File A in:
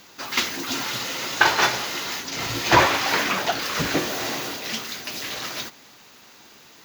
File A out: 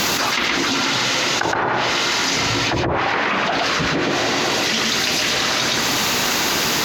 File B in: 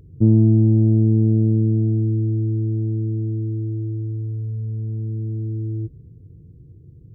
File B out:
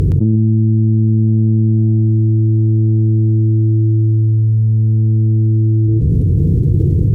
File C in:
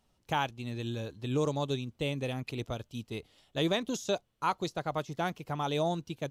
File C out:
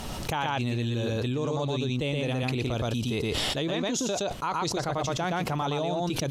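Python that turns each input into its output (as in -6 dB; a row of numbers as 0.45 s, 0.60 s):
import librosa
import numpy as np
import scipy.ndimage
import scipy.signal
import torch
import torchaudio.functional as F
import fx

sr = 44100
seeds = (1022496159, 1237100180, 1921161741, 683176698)

p1 = fx.env_lowpass_down(x, sr, base_hz=360.0, full_db=-12.0)
p2 = p1 + fx.echo_single(p1, sr, ms=119, db=-3.5, dry=0)
p3 = fx.env_flatten(p2, sr, amount_pct=100)
y = p3 * librosa.db_to_amplitude(-3.5)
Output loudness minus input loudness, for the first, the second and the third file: +5.5 LU, +7.0 LU, +5.0 LU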